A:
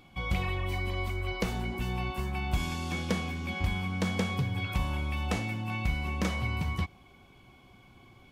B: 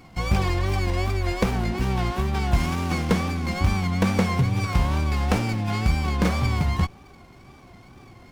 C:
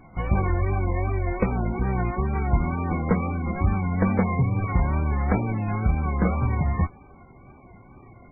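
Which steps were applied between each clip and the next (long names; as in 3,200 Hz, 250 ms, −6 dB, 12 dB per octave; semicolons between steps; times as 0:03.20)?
tape wow and flutter 90 cents; windowed peak hold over 9 samples; level +9 dB
running median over 15 samples; MP3 8 kbit/s 16,000 Hz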